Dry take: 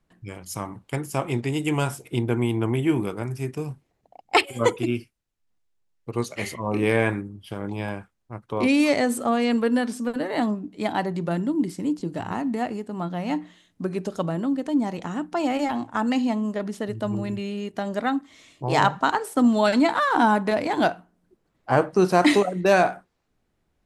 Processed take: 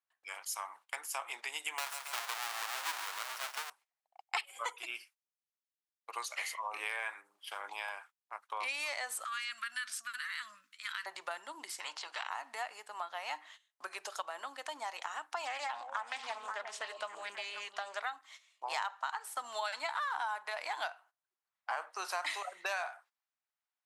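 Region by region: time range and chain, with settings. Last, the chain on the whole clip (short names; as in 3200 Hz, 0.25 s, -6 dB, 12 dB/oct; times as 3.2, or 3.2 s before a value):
1.78–3.7 half-waves squared off + low shelf 260 Hz -9 dB + feedback echo 0.138 s, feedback 39%, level -10 dB
9.24–11.06 elliptic band-stop 210–1300 Hz + transient shaper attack -11 dB, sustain +3 dB
11.8–12.29 LPF 4100 Hz + spectral compressor 2:1
15.45–18.02 LPF 8900 Hz 24 dB/oct + delay with a stepping band-pass 0.178 s, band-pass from 190 Hz, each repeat 1.4 oct, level -4.5 dB + Doppler distortion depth 0.22 ms
whole clip: gate -45 dBFS, range -17 dB; HPF 870 Hz 24 dB/oct; compressor 4:1, threshold -38 dBFS; gain +1.5 dB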